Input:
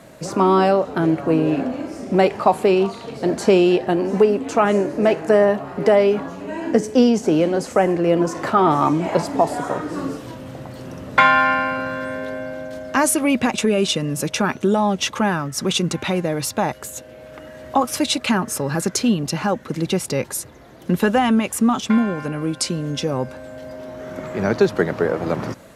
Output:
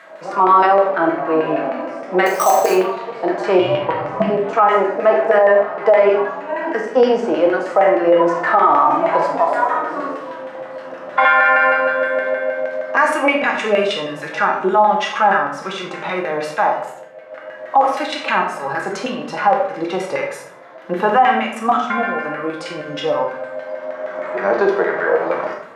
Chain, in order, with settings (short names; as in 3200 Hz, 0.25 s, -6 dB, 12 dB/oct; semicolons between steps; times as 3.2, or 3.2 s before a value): LFO band-pass saw down 6.4 Hz 600–2000 Hz; 2.26–2.74 sample-rate reducer 7000 Hz, jitter 0%; 3.59–4.3 ring modulator 230 Hz; 16.92–17.66 expander -42 dBFS; HPF 310 Hz 6 dB/oct; reverb RT60 0.70 s, pre-delay 6 ms, DRR 2.5 dB; harmonic-percussive split harmonic +9 dB; maximiser +9 dB; gain -3 dB